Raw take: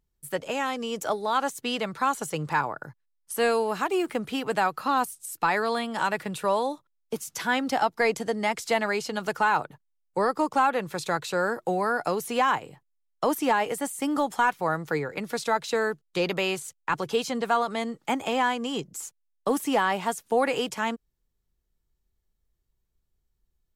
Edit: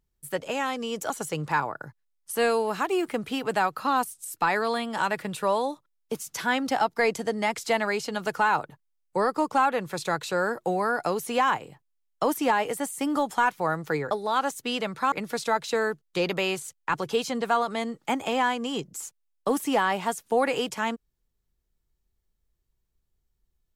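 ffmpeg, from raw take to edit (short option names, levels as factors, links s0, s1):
-filter_complex "[0:a]asplit=4[s0][s1][s2][s3];[s0]atrim=end=1.102[s4];[s1]atrim=start=2.108:end=15.122[s5];[s2]atrim=start=1.098:end=2.112[s6];[s3]atrim=start=15.118[s7];[s4][s5]acrossfade=d=0.004:c1=hsin:c2=hsin[s8];[s8][s6]acrossfade=d=0.004:c1=hsin:c2=hsin[s9];[s9][s7]acrossfade=d=0.004:c1=hsin:c2=hsin"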